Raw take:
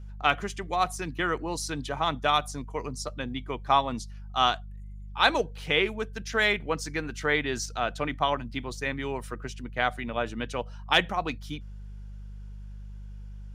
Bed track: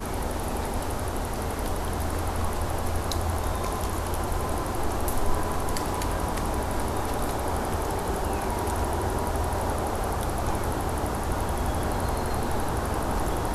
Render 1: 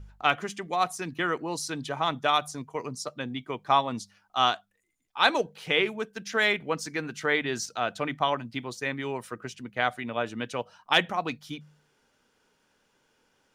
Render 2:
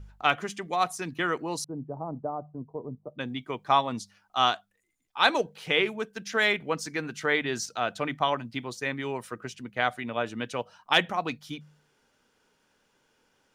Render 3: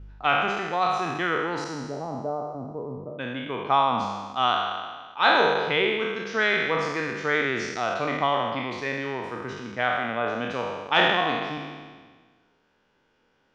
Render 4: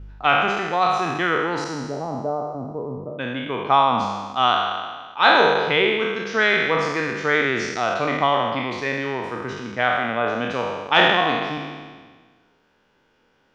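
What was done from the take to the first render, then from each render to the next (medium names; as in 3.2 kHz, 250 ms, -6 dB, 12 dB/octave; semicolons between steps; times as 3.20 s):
de-hum 50 Hz, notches 4
1.64–3.19 s: Bessel low-pass 520 Hz, order 6
spectral sustain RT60 1.55 s; distance through air 180 m
trim +4.5 dB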